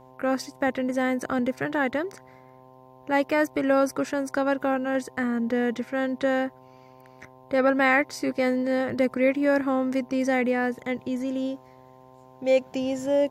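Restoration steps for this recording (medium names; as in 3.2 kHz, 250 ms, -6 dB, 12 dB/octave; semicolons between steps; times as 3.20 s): de-hum 129.3 Hz, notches 8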